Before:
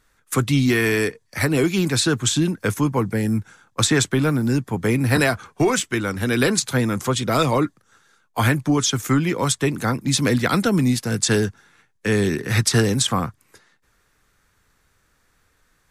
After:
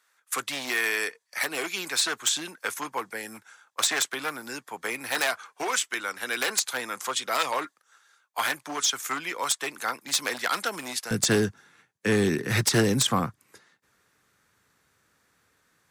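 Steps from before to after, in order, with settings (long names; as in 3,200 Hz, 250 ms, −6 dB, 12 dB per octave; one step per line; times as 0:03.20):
wavefolder on the positive side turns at −14 dBFS
high-pass filter 790 Hz 12 dB per octave, from 0:11.11 120 Hz
level −2.5 dB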